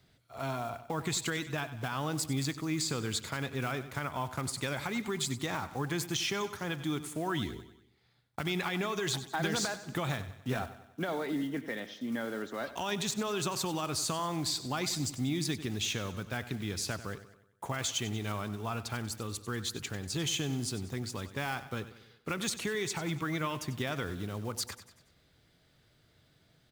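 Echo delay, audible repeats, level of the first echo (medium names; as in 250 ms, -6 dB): 95 ms, 4, -14.0 dB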